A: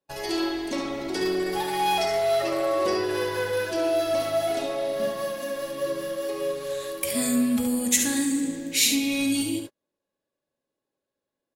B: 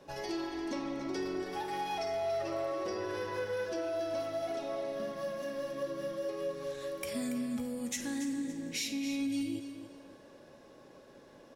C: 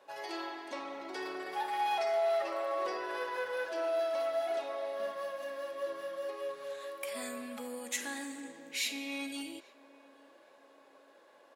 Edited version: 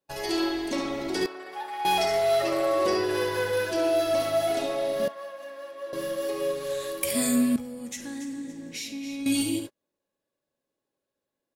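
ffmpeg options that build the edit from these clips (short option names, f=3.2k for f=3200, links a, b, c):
-filter_complex "[2:a]asplit=2[a][b];[0:a]asplit=4[c][d][e][f];[c]atrim=end=1.262[g];[a]atrim=start=1.258:end=1.852[h];[d]atrim=start=1.848:end=5.082[i];[b]atrim=start=5.078:end=5.932[j];[e]atrim=start=5.928:end=7.562[k];[1:a]atrim=start=7.558:end=9.262[l];[f]atrim=start=9.258[m];[g][h]acrossfade=d=0.004:c1=hsin:c2=hsin[n];[n][i]acrossfade=d=0.004:c1=hsin:c2=hsin[o];[o][j]acrossfade=d=0.004:c1=hsin:c2=hsin[p];[p][k]acrossfade=d=0.004:c1=hsin:c2=hsin[q];[q][l]acrossfade=d=0.004:c1=hsin:c2=hsin[r];[r][m]acrossfade=d=0.004:c1=hsin:c2=hsin"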